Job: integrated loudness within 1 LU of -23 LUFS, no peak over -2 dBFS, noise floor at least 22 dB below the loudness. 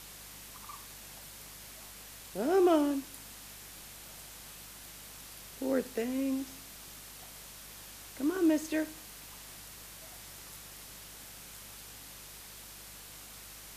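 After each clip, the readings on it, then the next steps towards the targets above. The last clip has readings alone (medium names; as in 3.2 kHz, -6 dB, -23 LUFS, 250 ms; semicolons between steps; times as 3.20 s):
hum 50 Hz; highest harmonic 200 Hz; hum level -57 dBFS; noise floor -50 dBFS; noise floor target -59 dBFS; loudness -37.0 LUFS; peak level -15.5 dBFS; loudness target -23.0 LUFS
-> de-hum 50 Hz, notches 4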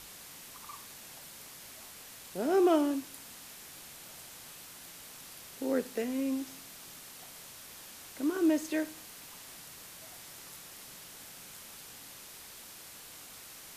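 hum not found; noise floor -50 dBFS; noise floor target -59 dBFS
-> noise print and reduce 9 dB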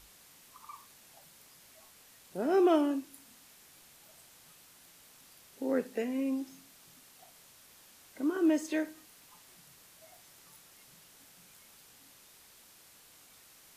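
noise floor -59 dBFS; loudness -31.5 LUFS; peak level -15.5 dBFS; loudness target -23.0 LUFS
-> trim +8.5 dB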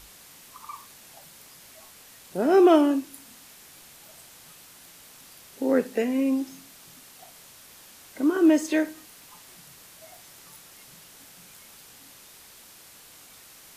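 loudness -23.0 LUFS; peak level -7.0 dBFS; noise floor -50 dBFS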